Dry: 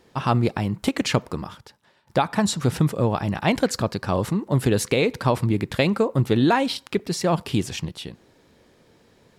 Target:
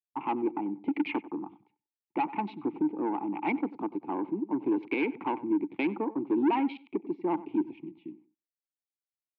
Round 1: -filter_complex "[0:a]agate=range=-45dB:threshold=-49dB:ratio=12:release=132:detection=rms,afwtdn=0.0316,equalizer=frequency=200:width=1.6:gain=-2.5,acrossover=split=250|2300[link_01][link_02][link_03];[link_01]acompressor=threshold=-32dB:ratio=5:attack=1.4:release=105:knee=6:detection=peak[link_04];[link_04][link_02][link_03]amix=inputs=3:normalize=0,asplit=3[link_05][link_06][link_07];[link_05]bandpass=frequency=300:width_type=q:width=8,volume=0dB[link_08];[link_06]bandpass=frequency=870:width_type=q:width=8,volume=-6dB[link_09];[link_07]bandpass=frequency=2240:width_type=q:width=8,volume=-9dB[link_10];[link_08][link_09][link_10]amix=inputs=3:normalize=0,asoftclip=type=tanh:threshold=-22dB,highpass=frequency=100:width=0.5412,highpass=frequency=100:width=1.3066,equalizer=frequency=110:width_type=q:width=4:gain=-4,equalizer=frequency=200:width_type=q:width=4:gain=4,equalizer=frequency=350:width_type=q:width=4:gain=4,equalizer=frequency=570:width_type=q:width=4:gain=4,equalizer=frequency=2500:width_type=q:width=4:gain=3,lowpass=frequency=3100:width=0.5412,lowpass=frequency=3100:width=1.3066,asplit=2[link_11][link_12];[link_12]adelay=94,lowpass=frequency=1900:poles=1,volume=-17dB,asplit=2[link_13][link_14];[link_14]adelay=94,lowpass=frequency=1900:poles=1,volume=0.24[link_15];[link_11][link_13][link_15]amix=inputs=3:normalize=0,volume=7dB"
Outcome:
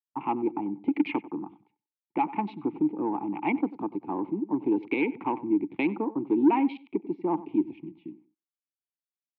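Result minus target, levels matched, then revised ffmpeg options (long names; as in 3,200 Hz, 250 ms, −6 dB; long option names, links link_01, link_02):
downward compressor: peak gain reduction −8 dB; soft clipping: distortion −8 dB
-filter_complex "[0:a]agate=range=-45dB:threshold=-49dB:ratio=12:release=132:detection=rms,afwtdn=0.0316,equalizer=frequency=200:width=1.6:gain=-2.5,acrossover=split=250|2300[link_01][link_02][link_03];[link_01]acompressor=threshold=-42dB:ratio=5:attack=1.4:release=105:knee=6:detection=peak[link_04];[link_04][link_02][link_03]amix=inputs=3:normalize=0,asplit=3[link_05][link_06][link_07];[link_05]bandpass=frequency=300:width_type=q:width=8,volume=0dB[link_08];[link_06]bandpass=frequency=870:width_type=q:width=8,volume=-6dB[link_09];[link_07]bandpass=frequency=2240:width_type=q:width=8,volume=-9dB[link_10];[link_08][link_09][link_10]amix=inputs=3:normalize=0,asoftclip=type=tanh:threshold=-30dB,highpass=frequency=100:width=0.5412,highpass=frequency=100:width=1.3066,equalizer=frequency=110:width_type=q:width=4:gain=-4,equalizer=frequency=200:width_type=q:width=4:gain=4,equalizer=frequency=350:width_type=q:width=4:gain=4,equalizer=frequency=570:width_type=q:width=4:gain=4,equalizer=frequency=2500:width_type=q:width=4:gain=3,lowpass=frequency=3100:width=0.5412,lowpass=frequency=3100:width=1.3066,asplit=2[link_11][link_12];[link_12]adelay=94,lowpass=frequency=1900:poles=1,volume=-17dB,asplit=2[link_13][link_14];[link_14]adelay=94,lowpass=frequency=1900:poles=1,volume=0.24[link_15];[link_11][link_13][link_15]amix=inputs=3:normalize=0,volume=7dB"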